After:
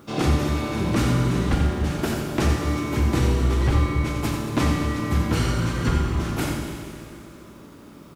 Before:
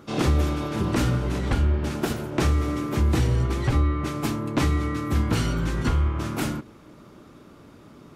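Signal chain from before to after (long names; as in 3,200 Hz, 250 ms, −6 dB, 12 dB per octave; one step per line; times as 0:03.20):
bit reduction 10 bits
on a send: single-tap delay 88 ms −7.5 dB
on the sum: four-comb reverb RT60 2.6 s, combs from 31 ms, DRR 2.5 dB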